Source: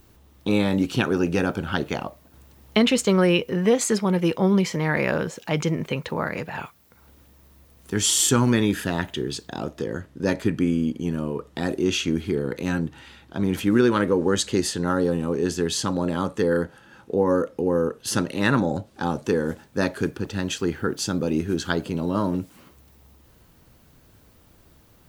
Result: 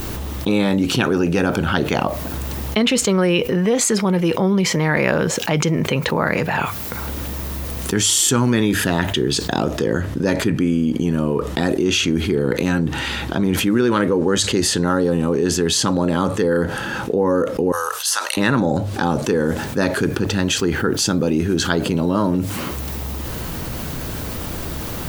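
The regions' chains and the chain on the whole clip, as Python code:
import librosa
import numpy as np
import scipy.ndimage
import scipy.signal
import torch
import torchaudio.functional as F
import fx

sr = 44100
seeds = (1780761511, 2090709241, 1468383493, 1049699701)

y = fx.chain(x, sr, fx.highpass(hz=980.0, slope=24),
    fx.peak_eq(hz=2200.0, db=-8.5, octaves=1.9),
    fx.band_squash(depth_pct=40), at=(17.72, 18.37))
y = fx.hum_notches(y, sr, base_hz=50, count=2)
y = fx.env_flatten(y, sr, amount_pct=70)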